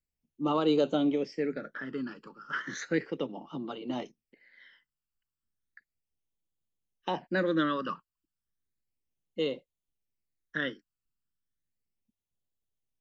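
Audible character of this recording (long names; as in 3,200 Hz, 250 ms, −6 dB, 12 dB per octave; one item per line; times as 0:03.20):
phaser sweep stages 12, 0.34 Hz, lowest notch 650–1,800 Hz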